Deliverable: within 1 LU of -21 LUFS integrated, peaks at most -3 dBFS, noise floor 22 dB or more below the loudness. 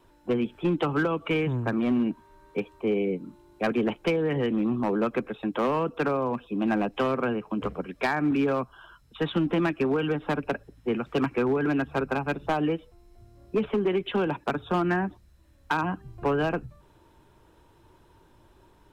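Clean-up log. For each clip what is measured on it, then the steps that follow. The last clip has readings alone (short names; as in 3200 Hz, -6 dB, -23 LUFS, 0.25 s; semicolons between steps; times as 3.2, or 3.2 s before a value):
clipped 1.0%; flat tops at -18.5 dBFS; loudness -27.5 LUFS; peak -18.5 dBFS; loudness target -21.0 LUFS
-> clip repair -18.5 dBFS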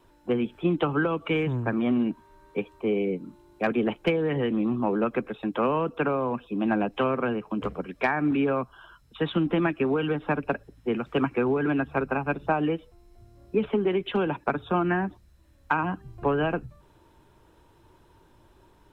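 clipped 0.0%; loudness -27.0 LUFS; peak -10.5 dBFS; loudness target -21.0 LUFS
-> gain +6 dB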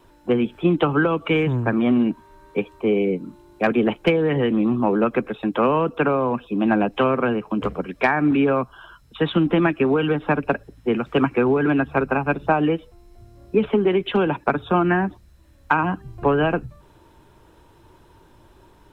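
loudness -21.0 LUFS; peak -4.5 dBFS; noise floor -53 dBFS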